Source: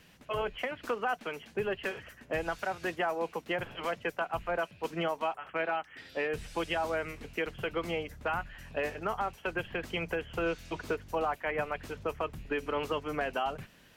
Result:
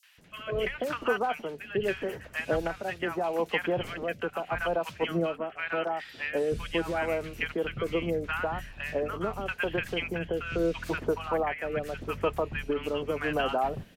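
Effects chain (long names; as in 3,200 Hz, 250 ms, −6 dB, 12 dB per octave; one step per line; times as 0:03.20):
rotating-speaker cabinet horn 0.8 Hz
three-band delay without the direct sound highs, mids, lows 30/180 ms, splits 1,100/5,700 Hz
level +7 dB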